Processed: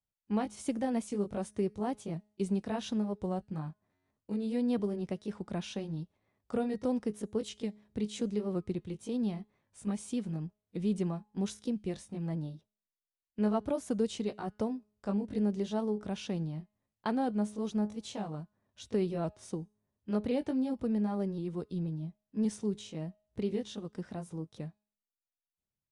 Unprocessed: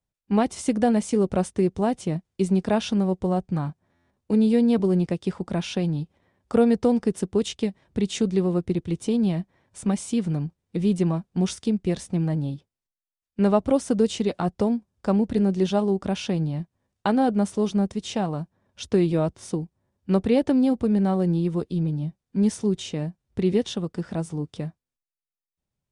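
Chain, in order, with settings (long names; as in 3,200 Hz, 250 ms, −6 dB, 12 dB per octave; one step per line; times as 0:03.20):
pitch shifter swept by a sawtooth +1.5 semitones, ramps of 1,069 ms
tuned comb filter 210 Hz, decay 0.55 s, harmonics all, mix 30%
level −7 dB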